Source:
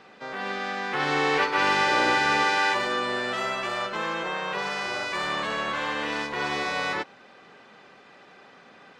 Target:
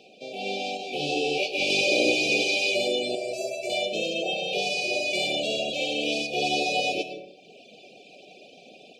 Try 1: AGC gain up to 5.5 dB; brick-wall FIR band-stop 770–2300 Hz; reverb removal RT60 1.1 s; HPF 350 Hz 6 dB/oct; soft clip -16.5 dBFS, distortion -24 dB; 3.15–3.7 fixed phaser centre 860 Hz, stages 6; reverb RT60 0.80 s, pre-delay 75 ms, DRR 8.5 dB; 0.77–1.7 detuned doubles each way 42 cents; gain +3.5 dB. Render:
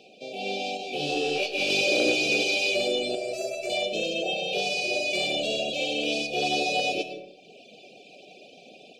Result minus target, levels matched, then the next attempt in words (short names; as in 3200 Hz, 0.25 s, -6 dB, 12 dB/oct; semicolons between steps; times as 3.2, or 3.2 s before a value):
soft clip: distortion +21 dB
AGC gain up to 5.5 dB; brick-wall FIR band-stop 770–2300 Hz; reverb removal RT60 1.1 s; HPF 350 Hz 6 dB/oct; soft clip -5 dBFS, distortion -45 dB; 3.15–3.7 fixed phaser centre 860 Hz, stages 6; reverb RT60 0.80 s, pre-delay 75 ms, DRR 8.5 dB; 0.77–1.7 detuned doubles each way 42 cents; gain +3.5 dB